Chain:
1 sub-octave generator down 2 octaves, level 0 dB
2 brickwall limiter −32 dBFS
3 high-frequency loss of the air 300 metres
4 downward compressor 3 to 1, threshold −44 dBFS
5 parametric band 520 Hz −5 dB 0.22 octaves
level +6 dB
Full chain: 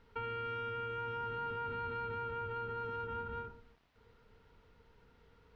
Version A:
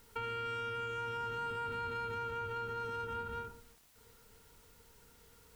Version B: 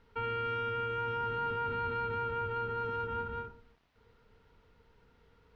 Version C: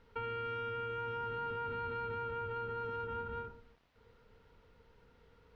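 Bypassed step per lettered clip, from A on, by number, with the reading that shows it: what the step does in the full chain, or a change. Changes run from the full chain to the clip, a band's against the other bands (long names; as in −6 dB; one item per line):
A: 3, 4 kHz band +5.0 dB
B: 4, change in crest factor −1.5 dB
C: 5, 500 Hz band +1.5 dB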